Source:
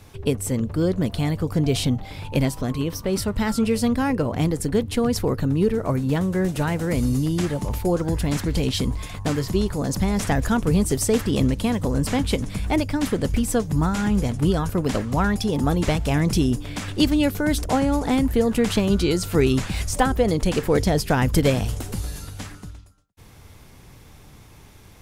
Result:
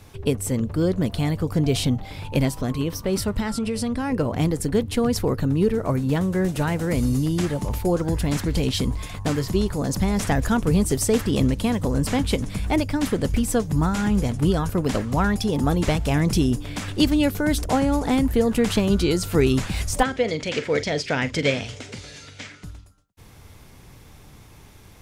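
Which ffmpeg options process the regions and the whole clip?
-filter_complex "[0:a]asettb=1/sr,asplit=3[a][b][c];[a]atrim=end=3.404[d];[b]atrim=start=3.4:end=4.12,asetpts=PTS-STARTPTS,afade=t=in:d=0.004:c=qsin,afade=t=out:st=0.716:d=0.004:c=qsin,lowpass=f=11k:w=0.5412,lowpass=f=11k:w=1.3066,bandreject=f=6.7k:w=17,acompressor=threshold=-21dB:ratio=6:attack=3.2:release=140:knee=1:detection=peak[e];[c]atrim=start=4.116[f];[d][e]acrossfade=d=0.004:c1=hsin:c2=qsin[g];[g][f]acrossfade=d=0.004:c1=qsin:c2=hsin,asettb=1/sr,asplit=3[h][i][j];[h]atrim=end=20.034[k];[i]atrim=start=20.03:end=22.64,asetpts=PTS-STARTPTS,afade=t=in:d=0.004:c=qsin,afade=t=out:st=2.606:d=0.004:c=qsin,highpass=170,equalizer=f=190:t=q:w=4:g=-10,equalizer=f=340:t=q:w=4:g=-8,equalizer=f=800:t=q:w=4:g=-7,equalizer=f=1.1k:t=q:w=4:g=-7,equalizer=f=2.2k:t=q:w=4:g=8,equalizer=f=3.3k:t=q:w=4:g=3,lowpass=f=6.8k:w=0.5412,lowpass=f=6.8k:w=1.3066,asplit=2[l][m];[m]adelay=43,volume=-13.5dB[n];[l][n]amix=inputs=2:normalize=0,atrim=end_sample=115101[o];[j]atrim=start=22.636[p];[k][o]acrossfade=d=0.004:c1=hsin:c2=qsin[q];[q][p]acrossfade=d=0.004:c1=qsin:c2=hsin"

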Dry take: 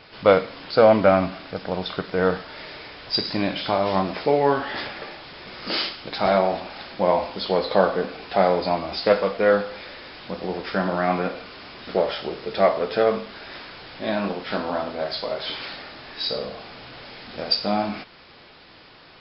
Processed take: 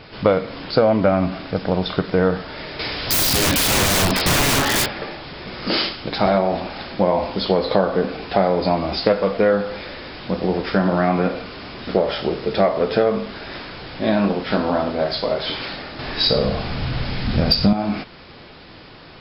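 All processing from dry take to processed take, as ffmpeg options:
-filter_complex "[0:a]asettb=1/sr,asplit=3[a][b][c];[a]atrim=end=2.794[d];[b]atrim=start=2.79:end=4.86,asetpts=PTS-STARTPTS,afade=t=in:d=0.004:c=qsin,afade=t=out:st=2.066:d=0.004:c=qsin,highshelf=f=3k:g=10.5,acontrast=22,aeval=exprs='(mod(6.68*val(0)+1,2)-1)/6.68':c=same[e];[c]atrim=start=4.856[f];[d][e]acrossfade=d=0.004:c1=hsin:c2=qsin[g];[g][f]acrossfade=d=0.004:c1=qsin:c2=hsin,asettb=1/sr,asplit=3[h][i][j];[h]atrim=end=15.994[k];[i]atrim=start=15.99:end=17.73,asetpts=PTS-STARTPTS,afade=t=in:d=0.004:c=qsin,afade=t=out:st=1.736:d=0.004:c=qsin,asubboost=boost=10:cutoff=180,acontrast=41[l];[j]atrim=start=17.726[m];[k][l]acrossfade=d=0.004:c1=hsin:c2=qsin[n];[n][m]acrossfade=d=0.004:c1=qsin:c2=hsin,lowshelf=f=400:g=8.5,acompressor=threshold=-17dB:ratio=5,volume=4dB"

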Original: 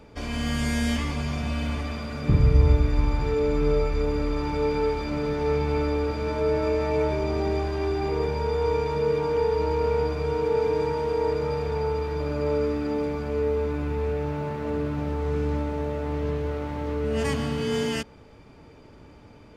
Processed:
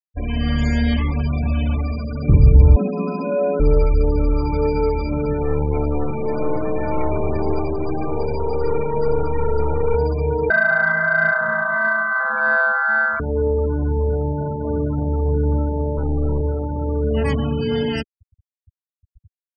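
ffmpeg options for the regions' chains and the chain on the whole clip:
-filter_complex "[0:a]asettb=1/sr,asplit=3[a][b][c];[a]atrim=end=2.764[d];[b]atrim=start=2.76:end=3.6,asetpts=PTS-STARTPTS,afade=t=in:d=0.004:c=qsin,afade=t=out:st=0.836:d=0.004:c=qsin,highpass=100,afreqshift=130[e];[c]atrim=start=3.596[f];[d][e]acrossfade=d=0.004:c1=hsin:c2=qsin[g];[g][f]acrossfade=d=0.004:c1=qsin:c2=hsin,asettb=1/sr,asplit=3[h][i][j];[h]atrim=end=5.424[k];[i]atrim=start=5.42:end=9.95,asetpts=PTS-STARTPTS,afade=t=in:d=0.004:c=qsin,afade=t=out:st=4.526:d=0.004:c=qsin,aeval=exprs='clip(val(0),-1,0.0299)':c=same,aecho=1:1:524:0.596,atrim=end_sample=199773[l];[j]atrim=start=9.946[m];[k][l]acrossfade=d=0.004:c1=hsin:c2=qsin[n];[n][m]acrossfade=d=0.004:c1=qsin:c2=hsin,asettb=1/sr,asplit=3[o][p][q];[o]atrim=end=10.504[r];[p]atrim=start=10.5:end=13.2,asetpts=PTS-STARTPTS,afade=t=in:d=0.004:c=qsin,afade=t=out:st=2.696:d=0.004:c=qsin,aeval=exprs='val(0)*sin(2*PI*1100*n/s)':c=same,equalizer=f=1.5k:w=4.1:g=9,aecho=1:1:328:0.355,atrim=end_sample=119070[s];[q]atrim=start=13.196[t];[r][s]acrossfade=d=0.004:c1=hsin:c2=qsin[u];[u][t]acrossfade=d=0.004:c1=qsin:c2=hsin,asettb=1/sr,asplit=3[v][w][x];[v]atrim=end=15.974[y];[w]atrim=start=15.97:end=16.41,asetpts=PTS-STARTPTS,afade=t=in:d=0.004:c=qsin,afade=t=out:st=0.436:d=0.004:c=qsin,equalizer=f=730:t=o:w=0.67:g=-9.5,acontrast=84,aeval=exprs='(tanh(17.8*val(0)+0.4)-tanh(0.4))/17.8':c=same[z];[x]atrim=start=16.406[aa];[y][z]acrossfade=d=0.004:c1=hsin:c2=qsin[ab];[ab][aa]acrossfade=d=0.004:c1=qsin:c2=hsin,afftfilt=real='re*gte(hypot(re,im),0.0398)':imag='im*gte(hypot(re,im),0.0398)':win_size=1024:overlap=0.75,lowshelf=f=100:g=8,acontrast=40,volume=-1dB"

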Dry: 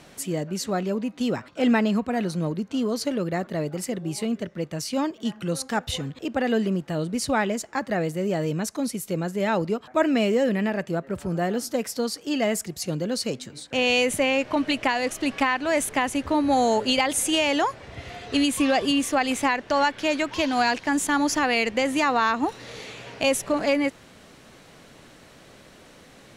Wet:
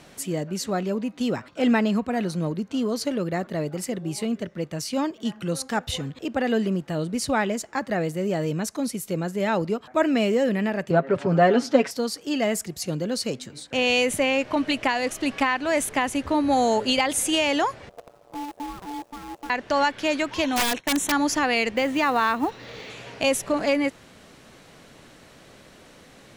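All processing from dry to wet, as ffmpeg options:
-filter_complex "[0:a]asettb=1/sr,asplit=3[a][b][c];[a]atrim=end=10.904[d];[b]atrim=start=10.9:end=11.91,asetpts=PTS-STARTPTS,afade=t=in:d=0.004:c=qsin,afade=t=out:st=1.006:d=0.004:c=qsin,aecho=1:1:7.3:0.59,atrim=end_sample=44541,acontrast=90,highpass=170,lowpass=3.6k[e];[c]atrim=start=11.906[f];[d][e]acrossfade=d=0.004:c1=hsin:c2=qsin[g];[g][f]acrossfade=d=0.004:c1=qsin:c2=hsin,asettb=1/sr,asplit=3[h][i][j];[h]atrim=end=17.894[k];[i]atrim=start=17.89:end=19.5,asetpts=PTS-STARTPTS,afade=t=in:d=0.004:c=qsin,afade=t=out:st=1.606:d=0.004:c=qsin,bandpass=f=110:t=q:w=1.1,acrusher=bits=7:dc=4:mix=0:aa=0.000001,aeval=exprs='val(0)*sin(2*PI*580*n/s)':c=same[l];[j]atrim=start=19.496[m];[k][l]acrossfade=d=0.004:c1=hsin:c2=qsin[n];[n][m]acrossfade=d=0.004:c1=qsin:c2=hsin,asettb=1/sr,asplit=3[o][p][q];[o]atrim=end=20.444[r];[p]atrim=start=20.44:end=21.12,asetpts=PTS-STARTPTS,afade=t=in:d=0.004:c=qsin,afade=t=out:st=0.676:d=0.004:c=qsin,agate=range=-33dB:threshold=-33dB:ratio=3:release=100:detection=peak,asuperstop=centerf=4800:order=8:qfactor=4.8,aeval=exprs='(mod(6.31*val(0)+1,2)-1)/6.31':c=same[s];[q]atrim=start=21.116[t];[r][s]acrossfade=d=0.004:c1=hsin:c2=qsin[u];[u][t]acrossfade=d=0.004:c1=qsin:c2=hsin,asettb=1/sr,asplit=3[v][w][x];[v]atrim=end=21.764[y];[w]atrim=start=21.76:end=22.9,asetpts=PTS-STARTPTS,afade=t=in:d=0.004:c=qsin,afade=t=out:st=1.136:d=0.004:c=qsin,lowpass=4.7k,acrusher=bits=7:mode=log:mix=0:aa=0.000001[z];[x]atrim=start=22.896[aa];[y][z]acrossfade=d=0.004:c1=hsin:c2=qsin[ab];[ab][aa]acrossfade=d=0.004:c1=qsin:c2=hsin"

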